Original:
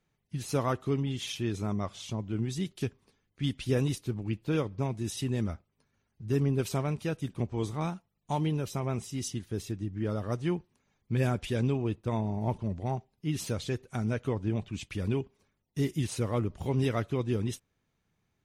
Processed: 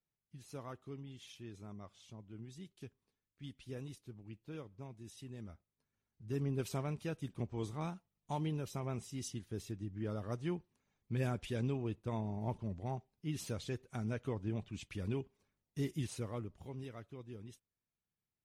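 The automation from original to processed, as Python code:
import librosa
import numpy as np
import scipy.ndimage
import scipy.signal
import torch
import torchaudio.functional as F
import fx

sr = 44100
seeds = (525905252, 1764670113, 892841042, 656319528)

y = fx.gain(x, sr, db=fx.line((5.37, -18.0), (6.61, -8.0), (16.03, -8.0), (16.9, -19.5)))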